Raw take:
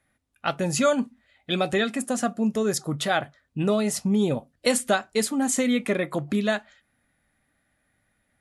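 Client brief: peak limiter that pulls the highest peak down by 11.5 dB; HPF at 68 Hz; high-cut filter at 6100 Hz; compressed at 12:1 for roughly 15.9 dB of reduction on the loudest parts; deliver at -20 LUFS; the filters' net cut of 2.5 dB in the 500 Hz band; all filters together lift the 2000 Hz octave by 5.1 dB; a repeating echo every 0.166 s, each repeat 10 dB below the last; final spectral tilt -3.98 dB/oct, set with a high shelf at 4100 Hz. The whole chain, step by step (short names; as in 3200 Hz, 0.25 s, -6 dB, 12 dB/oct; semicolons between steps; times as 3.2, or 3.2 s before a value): HPF 68 Hz; LPF 6100 Hz; bell 500 Hz -3.5 dB; bell 2000 Hz +5.5 dB; high shelf 4100 Hz +6 dB; compressor 12:1, threshold -33 dBFS; limiter -28 dBFS; feedback echo 0.166 s, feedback 32%, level -10 dB; gain +18.5 dB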